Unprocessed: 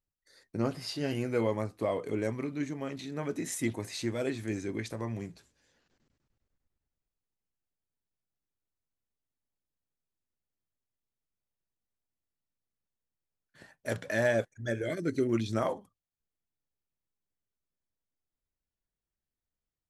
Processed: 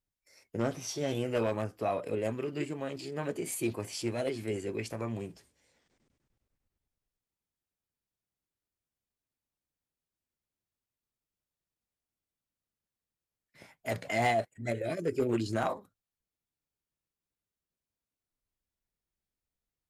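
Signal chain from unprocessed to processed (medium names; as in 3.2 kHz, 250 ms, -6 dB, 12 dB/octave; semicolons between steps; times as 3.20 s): formant shift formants +3 st; one-sided clip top -22 dBFS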